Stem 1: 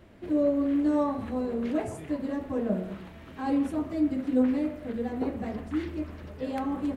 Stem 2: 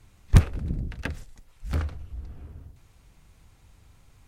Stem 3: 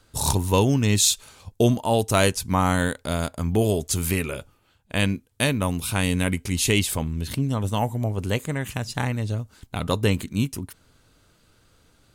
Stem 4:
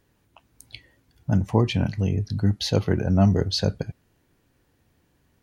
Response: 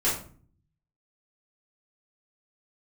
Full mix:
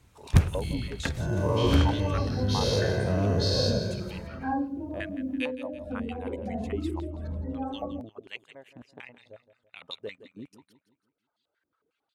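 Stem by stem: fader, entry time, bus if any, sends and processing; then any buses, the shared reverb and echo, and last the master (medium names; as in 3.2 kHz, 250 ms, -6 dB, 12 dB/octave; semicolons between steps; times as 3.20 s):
+3.0 dB, 1.05 s, send -5.5 dB, no echo send, spectral gate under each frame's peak -20 dB strong; compression 3:1, threshold -38 dBFS, peak gain reduction 14 dB; Shepard-style flanger rising 1.4 Hz
-3.0 dB, 0.00 s, send -24 dB, no echo send, level rider gain up to 7 dB
-4.5 dB, 0.00 s, no send, echo send -14 dB, reverb removal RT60 1.5 s; step-sequenced band-pass 11 Hz 290–3600 Hz
-12.5 dB, 0.00 s, no send, echo send -10 dB, every event in the spectrogram widened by 240 ms; comb 1.9 ms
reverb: on, RT60 0.45 s, pre-delay 4 ms
echo: feedback delay 166 ms, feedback 42%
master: high-pass 49 Hz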